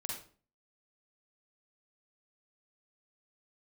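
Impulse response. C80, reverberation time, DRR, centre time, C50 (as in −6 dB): 7.5 dB, 0.40 s, −2.0 dB, 42 ms, 1.0 dB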